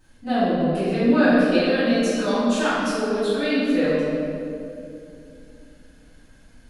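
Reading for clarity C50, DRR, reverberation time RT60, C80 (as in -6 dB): -4.0 dB, -15.5 dB, 2.6 s, -1.5 dB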